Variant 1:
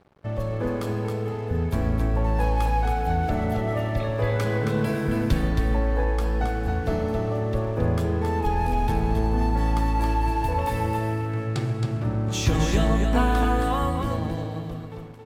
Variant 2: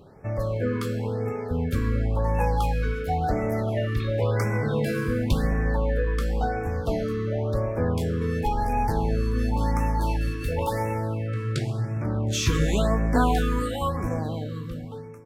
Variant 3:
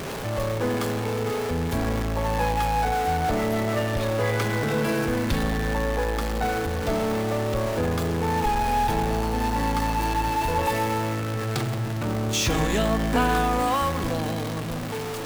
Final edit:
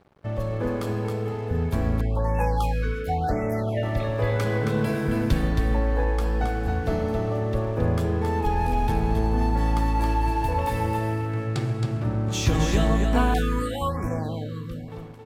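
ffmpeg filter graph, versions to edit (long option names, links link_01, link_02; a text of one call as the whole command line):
ffmpeg -i take0.wav -i take1.wav -filter_complex "[1:a]asplit=2[link_01][link_02];[0:a]asplit=3[link_03][link_04][link_05];[link_03]atrim=end=2.012[link_06];[link_01]atrim=start=2.008:end=3.832[link_07];[link_04]atrim=start=3.828:end=13.342[link_08];[link_02]atrim=start=13.338:end=14.882[link_09];[link_05]atrim=start=14.878[link_10];[link_06][link_07]acrossfade=duration=0.004:curve1=hsin:curve2=hsin[link_11];[link_11][link_08]acrossfade=duration=0.004:curve1=hsin:curve2=hsin[link_12];[link_12][link_09]acrossfade=duration=0.004:curve1=hsin:curve2=hsin[link_13];[link_13][link_10]acrossfade=duration=0.004:curve1=hsin:curve2=hsin" out.wav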